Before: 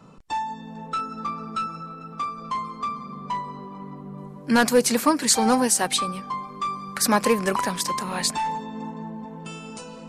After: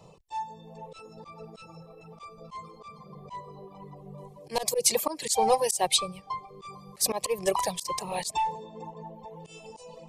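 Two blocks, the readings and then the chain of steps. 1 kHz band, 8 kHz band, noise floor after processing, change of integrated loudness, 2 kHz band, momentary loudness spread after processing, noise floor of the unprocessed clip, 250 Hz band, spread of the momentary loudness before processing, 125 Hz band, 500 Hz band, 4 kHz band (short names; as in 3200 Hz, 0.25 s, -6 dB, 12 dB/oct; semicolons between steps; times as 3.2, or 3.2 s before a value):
-6.0 dB, -4.5 dB, -53 dBFS, -3.5 dB, -12.5 dB, 23 LU, -41 dBFS, -16.5 dB, 18 LU, -9.0 dB, -4.0 dB, -3.5 dB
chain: reverb removal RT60 1.1 s; fixed phaser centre 600 Hz, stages 4; auto swell 0.132 s; gain +2.5 dB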